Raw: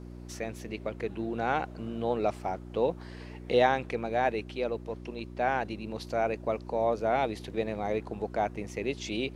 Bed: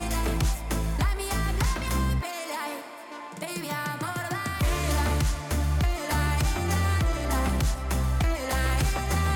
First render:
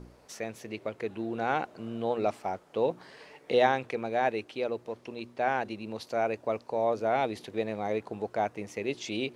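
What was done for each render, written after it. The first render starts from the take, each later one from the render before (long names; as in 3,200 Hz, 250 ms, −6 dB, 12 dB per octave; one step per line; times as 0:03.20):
hum removal 60 Hz, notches 6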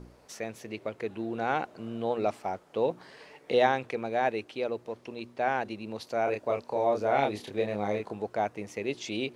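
0:06.24–0:08.13: double-tracking delay 29 ms −3 dB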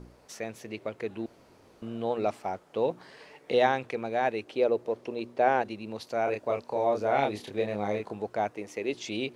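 0:01.26–0:01.82: fill with room tone
0:04.47–0:05.62: parametric band 470 Hz +7.5 dB 1.6 octaves
0:08.51–0:08.93: low shelf with overshoot 220 Hz −6 dB, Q 1.5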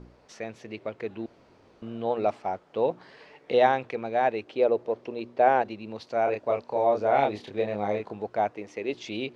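low-pass filter 4,900 Hz 12 dB per octave
dynamic equaliser 710 Hz, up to +4 dB, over −33 dBFS, Q 1.1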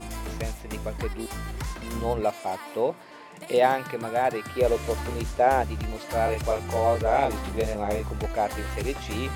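mix in bed −7.5 dB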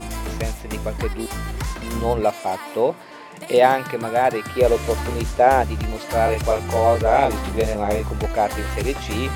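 level +6 dB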